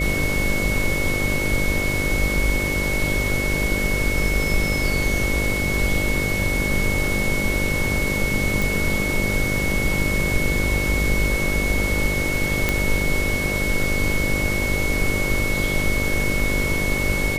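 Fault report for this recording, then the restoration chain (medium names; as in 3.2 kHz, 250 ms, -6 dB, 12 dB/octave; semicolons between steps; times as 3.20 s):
buzz 50 Hz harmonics 12 -27 dBFS
whine 2.2 kHz -24 dBFS
8.62 s: pop
12.69 s: pop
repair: de-click; de-hum 50 Hz, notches 12; band-stop 2.2 kHz, Q 30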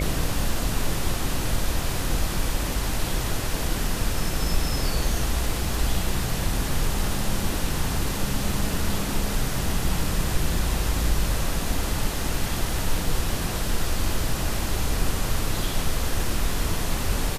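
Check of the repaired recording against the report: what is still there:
nothing left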